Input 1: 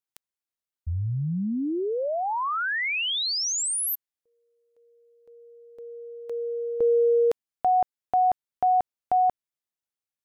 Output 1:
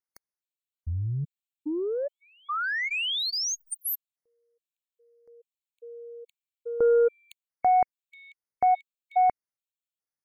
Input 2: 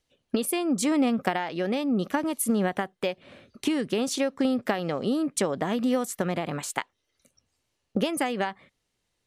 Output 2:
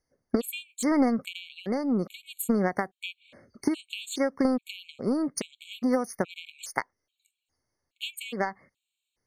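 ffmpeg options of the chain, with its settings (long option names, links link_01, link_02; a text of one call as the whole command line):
ffmpeg -i in.wav -af "aeval=exprs='0.398*(cos(1*acos(clip(val(0)/0.398,-1,1)))-cos(1*PI/2))+0.00251*(cos(2*acos(clip(val(0)/0.398,-1,1)))-cos(2*PI/2))+0.00316*(cos(4*acos(clip(val(0)/0.398,-1,1)))-cos(4*PI/2))+0.0224*(cos(7*acos(clip(val(0)/0.398,-1,1)))-cos(7*PI/2))':channel_layout=same,afftfilt=real='re*gt(sin(2*PI*1.2*pts/sr)*(1-2*mod(floor(b*sr/1024/2200),2)),0)':imag='im*gt(sin(2*PI*1.2*pts/sr)*(1-2*mod(floor(b*sr/1024/2200),2)),0)':win_size=1024:overlap=0.75,volume=2dB" out.wav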